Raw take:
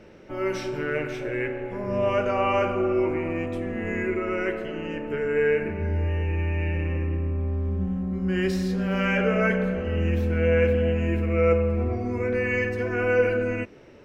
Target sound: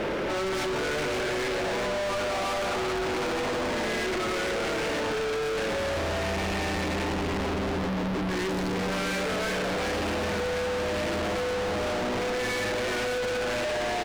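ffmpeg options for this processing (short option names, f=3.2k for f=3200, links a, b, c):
-filter_complex "[0:a]asoftclip=type=tanh:threshold=-20dB,asplit=7[a][b][c][d][e][f][g];[b]adelay=392,afreqshift=110,volume=-8dB[h];[c]adelay=784,afreqshift=220,volume=-13.8dB[i];[d]adelay=1176,afreqshift=330,volume=-19.7dB[j];[e]adelay=1568,afreqshift=440,volume=-25.5dB[k];[f]adelay=1960,afreqshift=550,volume=-31.4dB[l];[g]adelay=2352,afreqshift=660,volume=-37.2dB[m];[a][h][i][j][k][l][m]amix=inputs=7:normalize=0,asplit=2[n][o];[o]highpass=f=720:p=1,volume=34dB,asoftclip=type=tanh:threshold=-15dB[p];[n][p]amix=inputs=2:normalize=0,lowpass=f=1k:p=1,volume=-6dB,volume=34dB,asoftclip=hard,volume=-34dB,aeval=exprs='val(0)+0.002*(sin(2*PI*50*n/s)+sin(2*PI*2*50*n/s)/2+sin(2*PI*3*50*n/s)/3+sin(2*PI*4*50*n/s)/4+sin(2*PI*5*50*n/s)/5)':c=same,volume=6dB"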